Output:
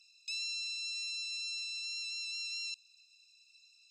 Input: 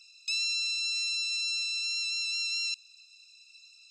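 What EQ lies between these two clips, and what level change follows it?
HPF 1400 Hz; -8.0 dB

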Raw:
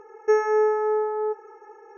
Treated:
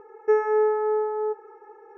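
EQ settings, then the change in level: LPF 2500 Hz 6 dB/oct; air absorption 170 m; 0.0 dB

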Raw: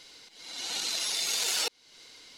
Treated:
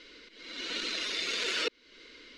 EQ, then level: LPF 2200 Hz 12 dB/oct; fixed phaser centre 330 Hz, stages 4; +8.5 dB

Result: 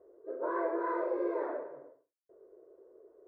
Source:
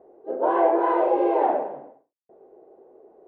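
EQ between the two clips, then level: fixed phaser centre 790 Hz, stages 6; dynamic EQ 510 Hz, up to -5 dB, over -36 dBFS, Q 0.91; -5.5 dB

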